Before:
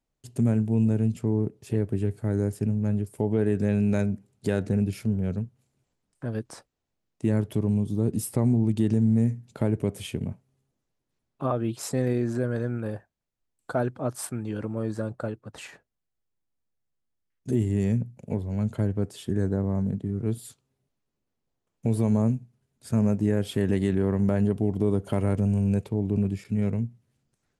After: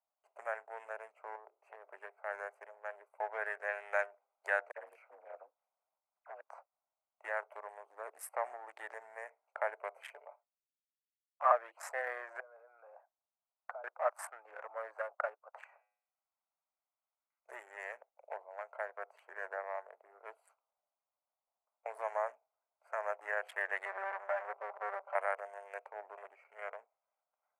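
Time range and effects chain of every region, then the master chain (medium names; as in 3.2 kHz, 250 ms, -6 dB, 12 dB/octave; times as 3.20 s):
1.35–1.93 s: hum notches 60/120/180/240/300/360 Hz + compression 12:1, threshold -26 dBFS
4.71–6.41 s: ring modulator 61 Hz + phase dispersion lows, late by 52 ms, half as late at 2.4 kHz
10.13–11.49 s: expander -60 dBFS + high-pass 370 Hz + comb 6.9 ms, depth 59%
12.40–13.84 s: bass shelf 120 Hz -7 dB + compression 16:1, threshold -38 dBFS
15.64–17.49 s: de-hum 104.6 Hz, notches 30 + compression 1.5:1, threshold -56 dBFS + tape noise reduction on one side only encoder only
23.85–25.15 s: comb filter that takes the minimum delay 5.1 ms + distance through air 75 m
whole clip: local Wiener filter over 25 samples; steep high-pass 620 Hz 48 dB/octave; resonant high shelf 2.6 kHz -12 dB, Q 3; trim +2 dB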